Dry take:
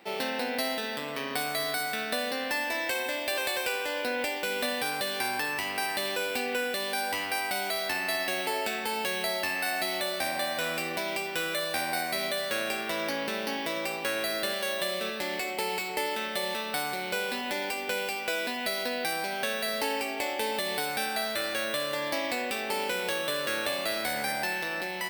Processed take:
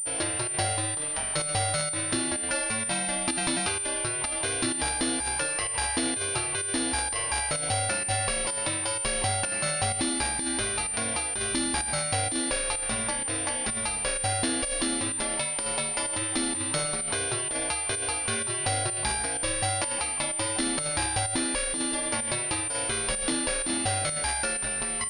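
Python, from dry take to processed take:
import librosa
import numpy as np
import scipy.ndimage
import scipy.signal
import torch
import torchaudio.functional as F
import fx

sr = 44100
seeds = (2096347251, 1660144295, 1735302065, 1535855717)

y = np.diff(x, prepend=0.0)
y = fx.volume_shaper(y, sr, bpm=127, per_beat=1, depth_db=-10, release_ms=67.0, shape='slow start')
y = fx.pwm(y, sr, carrier_hz=9100.0)
y = y * 10.0 ** (7.5 / 20.0)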